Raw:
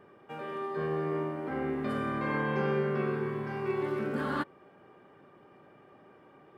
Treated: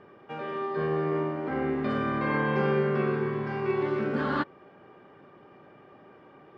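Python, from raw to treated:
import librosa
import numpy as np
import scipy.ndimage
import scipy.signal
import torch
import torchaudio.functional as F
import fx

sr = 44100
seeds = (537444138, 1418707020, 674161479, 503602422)

y = scipy.signal.sosfilt(scipy.signal.butter(4, 5700.0, 'lowpass', fs=sr, output='sos'), x)
y = y * 10.0 ** (4.0 / 20.0)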